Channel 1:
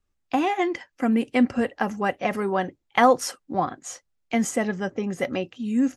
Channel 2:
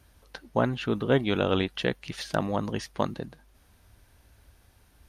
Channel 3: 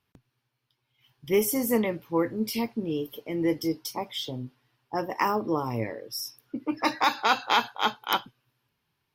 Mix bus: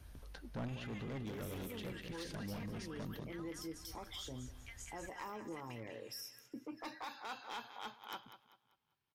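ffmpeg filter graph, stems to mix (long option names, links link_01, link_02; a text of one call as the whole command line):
ffmpeg -i stem1.wav -i stem2.wav -i stem3.wav -filter_complex "[0:a]highpass=frequency=1400:width=0.5412,highpass=frequency=1400:width=1.3066,acompressor=threshold=-32dB:ratio=6,adelay=350,volume=-17dB,asplit=2[link_01][link_02];[link_02]volume=-4.5dB[link_03];[1:a]lowshelf=frequency=85:gain=11,acrossover=split=390|3000[link_04][link_05][link_06];[link_05]acompressor=threshold=-42dB:ratio=1.5[link_07];[link_04][link_07][link_06]amix=inputs=3:normalize=0,volume=-2dB,asplit=2[link_08][link_09];[link_09]volume=-19dB[link_10];[2:a]agate=range=-10dB:threshold=-59dB:ratio=16:detection=peak,acompressor=threshold=-49dB:ratio=1.5,volume=-1.5dB,asplit=2[link_11][link_12];[link_12]volume=-22.5dB[link_13];[link_08][link_11]amix=inputs=2:normalize=0,asoftclip=type=hard:threshold=-29dB,acompressor=threshold=-43dB:ratio=2.5,volume=0dB[link_14];[link_03][link_10][link_13]amix=inputs=3:normalize=0,aecho=0:1:195|390|585|780|975:1|0.36|0.13|0.0467|0.0168[link_15];[link_01][link_14][link_15]amix=inputs=3:normalize=0,alimiter=level_in=13.5dB:limit=-24dB:level=0:latency=1:release=33,volume=-13.5dB" out.wav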